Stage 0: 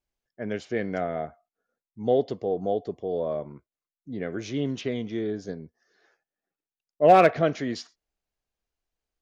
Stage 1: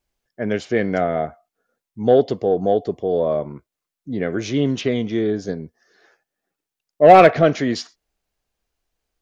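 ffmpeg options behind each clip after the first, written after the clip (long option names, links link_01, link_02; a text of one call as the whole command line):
ffmpeg -i in.wav -af "acontrast=76,volume=2dB" out.wav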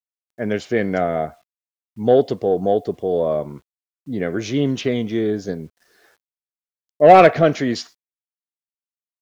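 ffmpeg -i in.wav -af "acrusher=bits=9:mix=0:aa=0.000001" out.wav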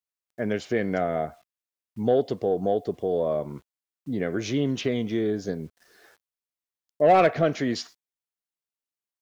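ffmpeg -i in.wav -af "acompressor=threshold=-31dB:ratio=1.5" out.wav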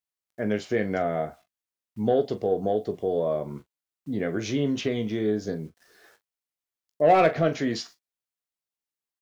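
ffmpeg -i in.wav -af "aecho=1:1:19|42:0.299|0.211,volume=-1dB" out.wav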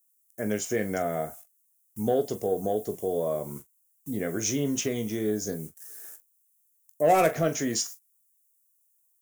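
ffmpeg -i in.wav -af "aexciter=amount=15.1:drive=6:freq=6400,volume=-2.5dB" out.wav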